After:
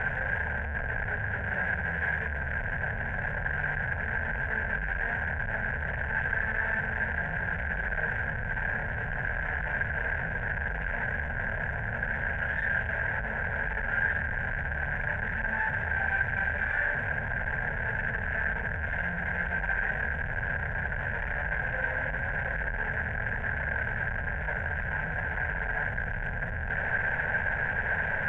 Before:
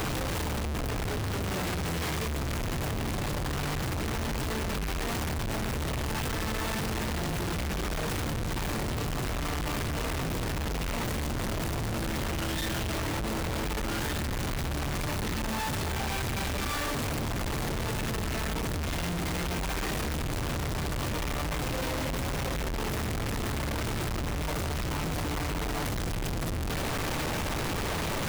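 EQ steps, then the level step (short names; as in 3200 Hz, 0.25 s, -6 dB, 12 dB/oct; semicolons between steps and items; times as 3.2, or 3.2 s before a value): synth low-pass 1600 Hz, resonance Q 13; fixed phaser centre 1200 Hz, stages 6; -2.0 dB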